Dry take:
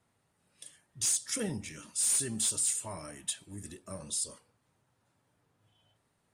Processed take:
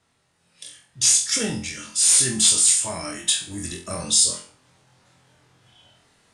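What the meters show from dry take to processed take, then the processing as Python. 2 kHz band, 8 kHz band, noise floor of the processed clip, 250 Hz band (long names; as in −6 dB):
+14.0 dB, +13.0 dB, −68 dBFS, +9.5 dB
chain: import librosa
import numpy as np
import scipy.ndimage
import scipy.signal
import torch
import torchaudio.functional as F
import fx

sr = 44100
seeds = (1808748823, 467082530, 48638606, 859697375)

p1 = scipy.signal.sosfilt(scipy.signal.butter(2, 6300.0, 'lowpass', fs=sr, output='sos'), x)
p2 = fx.high_shelf(p1, sr, hz=2200.0, db=10.5)
p3 = fx.rider(p2, sr, range_db=4, speed_s=2.0)
p4 = p3 + fx.room_flutter(p3, sr, wall_m=4.0, rt60_s=0.37, dry=0)
y = p4 * librosa.db_to_amplitude(7.0)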